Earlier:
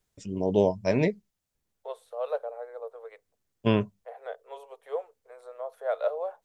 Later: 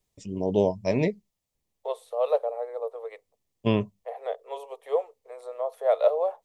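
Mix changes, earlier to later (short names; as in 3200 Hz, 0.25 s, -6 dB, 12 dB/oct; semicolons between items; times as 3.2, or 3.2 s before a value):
second voice +7.0 dB; master: add bell 1500 Hz -14.5 dB 0.28 oct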